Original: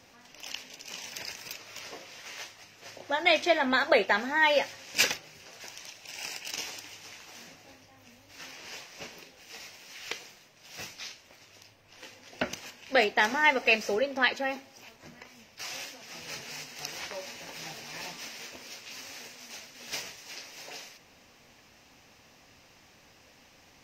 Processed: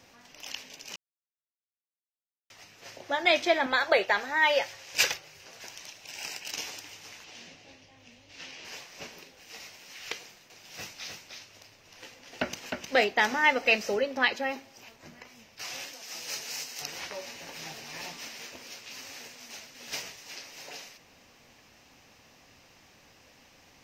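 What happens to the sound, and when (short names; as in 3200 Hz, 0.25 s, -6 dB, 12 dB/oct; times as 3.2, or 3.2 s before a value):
0.96–2.5 mute
3.66–5.45 bell 230 Hz -14 dB 0.63 oct
7.24–8.65 EQ curve 540 Hz 0 dB, 1300 Hz -4 dB, 3000 Hz +4 dB, 6600 Hz -2 dB, 13000 Hz -15 dB
10.19–13.06 echo 0.308 s -4.5 dB
15.93–16.82 tone controls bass -10 dB, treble +8 dB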